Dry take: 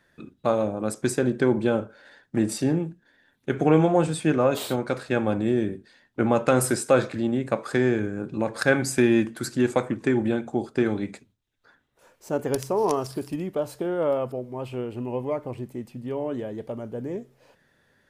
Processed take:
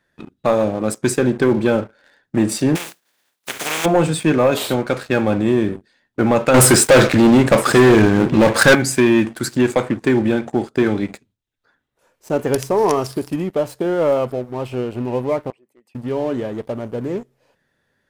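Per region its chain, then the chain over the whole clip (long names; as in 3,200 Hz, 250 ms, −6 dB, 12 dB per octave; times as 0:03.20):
0:02.75–0:03.84: compressing power law on the bin magnitudes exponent 0.28 + high-pass filter 390 Hz 6 dB per octave + downward compressor 2 to 1, threshold −38 dBFS
0:06.54–0:08.75: leveller curve on the samples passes 3 + single-tap delay 967 ms −20.5 dB
0:15.50–0:15.95: spectral envelope exaggerated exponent 1.5 + high-pass filter 900 Hz
whole clip: dynamic equaliser 2,400 Hz, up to +3 dB, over −41 dBFS, Q 1.2; leveller curve on the samples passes 2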